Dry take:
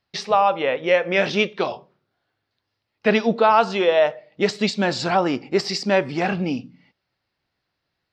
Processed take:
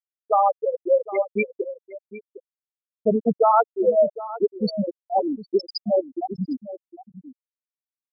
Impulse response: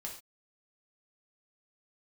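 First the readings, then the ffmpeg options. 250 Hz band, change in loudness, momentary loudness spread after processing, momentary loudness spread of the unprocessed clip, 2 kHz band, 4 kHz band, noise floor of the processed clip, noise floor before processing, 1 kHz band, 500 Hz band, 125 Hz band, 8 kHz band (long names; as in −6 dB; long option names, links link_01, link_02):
−3.5 dB, −2.5 dB, 19 LU, 8 LU, −14.5 dB, −12.0 dB, below −85 dBFS, −79 dBFS, −1.5 dB, −1.5 dB, −6.0 dB, below −40 dB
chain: -filter_complex "[0:a]aexciter=amount=1.9:drive=8.2:freq=4000,afftfilt=real='re*gte(hypot(re,im),0.708)':imag='im*gte(hypot(re,im),0.708)':win_size=1024:overlap=0.75,asplit=2[link_01][link_02];[link_02]adelay=758,volume=-15dB,highshelf=frequency=4000:gain=-17.1[link_03];[link_01][link_03]amix=inputs=2:normalize=0"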